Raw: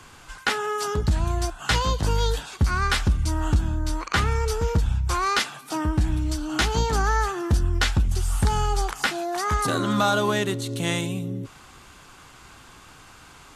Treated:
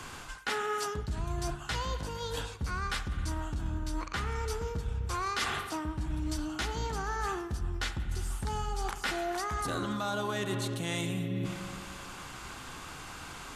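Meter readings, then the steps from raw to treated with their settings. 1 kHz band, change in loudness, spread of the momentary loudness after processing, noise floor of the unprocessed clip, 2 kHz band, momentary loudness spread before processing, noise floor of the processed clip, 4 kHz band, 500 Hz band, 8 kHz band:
-9.0 dB, -10.5 dB, 10 LU, -48 dBFS, -9.0 dB, 5 LU, -45 dBFS, -9.5 dB, -9.0 dB, -9.0 dB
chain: spring tank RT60 2.1 s, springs 42/49 ms, chirp 50 ms, DRR 9 dB; reverse; compression 16:1, threshold -33 dBFS, peak gain reduction 18.5 dB; reverse; hum notches 50/100 Hz; trim +3.5 dB

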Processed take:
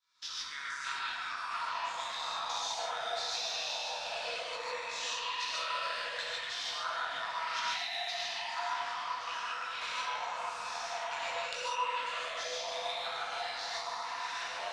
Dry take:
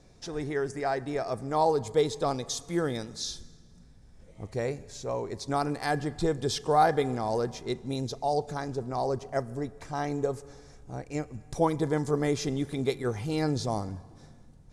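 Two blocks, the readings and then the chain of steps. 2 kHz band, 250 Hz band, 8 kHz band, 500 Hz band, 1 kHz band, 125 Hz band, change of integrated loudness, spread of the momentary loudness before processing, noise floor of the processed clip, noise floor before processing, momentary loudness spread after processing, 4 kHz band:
+4.0 dB, -32.5 dB, -2.0 dB, -14.5 dB, -4.0 dB, under -30 dB, -5.5 dB, 11 LU, -41 dBFS, -54 dBFS, 4 LU, +5.5 dB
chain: spectral sustain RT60 1.07 s; recorder AGC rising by 46 dB/s; rippled Chebyshev high-pass 940 Hz, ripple 9 dB; compression 3:1, threshold -40 dBFS, peak gain reduction 11 dB; chorus voices 4, 1.5 Hz, delay 20 ms, depth 3 ms; power-law waveshaper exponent 1.4; distance through air 80 m; gated-style reverb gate 170 ms rising, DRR -3.5 dB; ever faster or slower copies 526 ms, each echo -6 st, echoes 2; trim +8 dB

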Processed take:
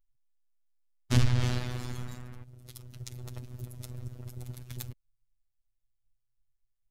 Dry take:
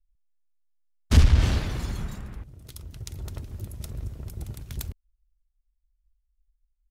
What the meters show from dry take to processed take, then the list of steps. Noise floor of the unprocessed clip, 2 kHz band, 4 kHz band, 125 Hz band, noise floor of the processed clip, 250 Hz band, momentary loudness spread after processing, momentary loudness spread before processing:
-75 dBFS, -4.0 dB, -4.0 dB, -5.0 dB, -78 dBFS, -3.5 dB, 21 LU, 21 LU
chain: robot voice 124 Hz; trim -2 dB

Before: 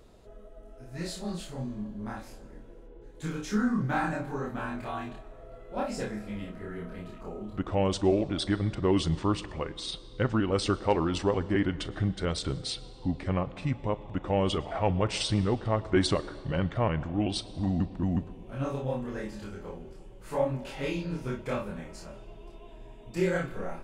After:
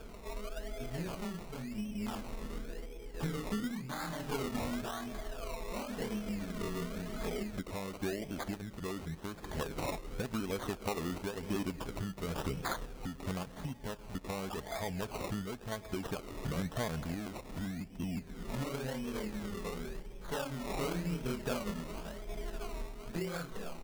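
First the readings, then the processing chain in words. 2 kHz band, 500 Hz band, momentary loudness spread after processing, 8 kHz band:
-5.5 dB, -9.0 dB, 7 LU, -3.5 dB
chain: comb 4.6 ms, depth 42%; compression 8:1, threshold -40 dBFS, peak gain reduction 20.5 dB; random-step tremolo; decimation with a swept rate 22×, swing 60% 0.93 Hz; trim +7.5 dB

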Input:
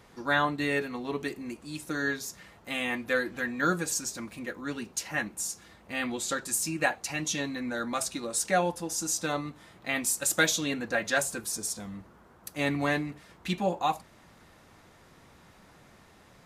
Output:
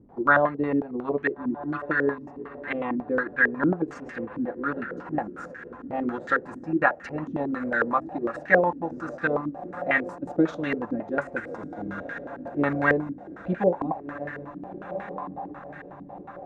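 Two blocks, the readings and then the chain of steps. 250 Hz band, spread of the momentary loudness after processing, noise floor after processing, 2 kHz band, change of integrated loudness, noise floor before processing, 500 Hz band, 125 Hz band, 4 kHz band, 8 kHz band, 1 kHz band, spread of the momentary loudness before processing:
+6.0 dB, 15 LU, -44 dBFS, +4.5 dB, +3.0 dB, -57 dBFS, +6.5 dB, +3.0 dB, -16.0 dB, under -30 dB, +4.5 dB, 12 LU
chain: echo that smears into a reverb 1376 ms, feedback 52%, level -11.5 dB; transient shaper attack +2 dB, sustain -5 dB; step-sequenced low-pass 11 Hz 280–1700 Hz; trim +1.5 dB

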